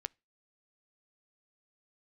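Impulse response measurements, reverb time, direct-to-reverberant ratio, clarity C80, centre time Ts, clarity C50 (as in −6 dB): 0.30 s, 20.0 dB, 38.5 dB, 1 ms, 32.0 dB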